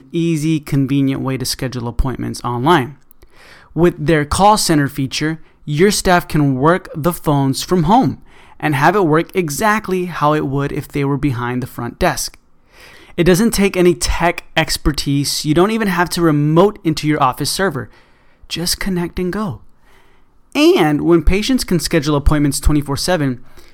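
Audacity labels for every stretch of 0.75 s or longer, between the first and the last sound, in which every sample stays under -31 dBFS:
19.560000	20.520000	silence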